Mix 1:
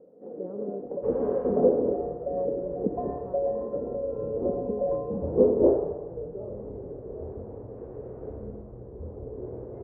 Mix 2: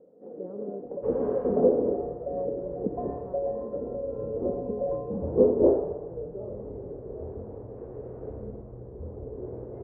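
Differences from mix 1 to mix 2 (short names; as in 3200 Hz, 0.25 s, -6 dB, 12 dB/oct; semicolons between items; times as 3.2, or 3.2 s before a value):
second sound +4.0 dB; reverb: off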